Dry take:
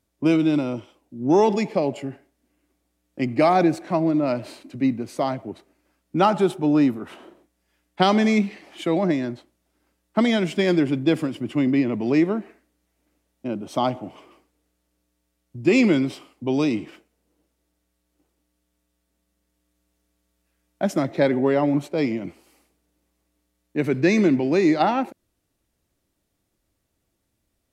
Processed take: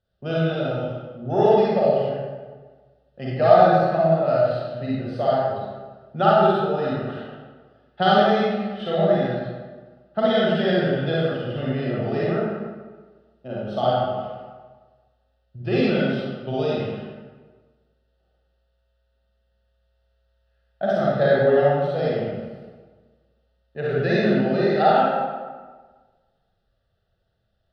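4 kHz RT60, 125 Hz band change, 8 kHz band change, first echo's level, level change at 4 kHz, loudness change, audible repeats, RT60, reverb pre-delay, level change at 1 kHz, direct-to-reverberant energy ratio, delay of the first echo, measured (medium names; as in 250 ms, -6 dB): 0.90 s, +3.0 dB, no reading, no echo, +1.5 dB, +0.5 dB, no echo, 1.4 s, 38 ms, +4.0 dB, -7.0 dB, no echo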